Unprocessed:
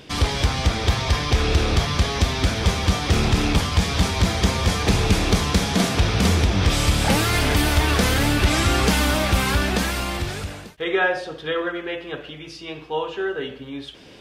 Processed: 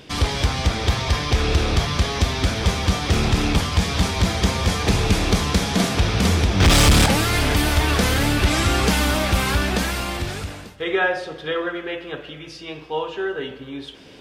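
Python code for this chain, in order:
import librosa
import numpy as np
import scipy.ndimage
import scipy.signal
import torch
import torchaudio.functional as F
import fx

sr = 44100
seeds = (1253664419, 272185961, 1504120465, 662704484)

y = fx.leveller(x, sr, passes=3, at=(6.6, 7.06))
y = fx.rev_freeverb(y, sr, rt60_s=2.6, hf_ratio=0.9, predelay_ms=110, drr_db=19.0)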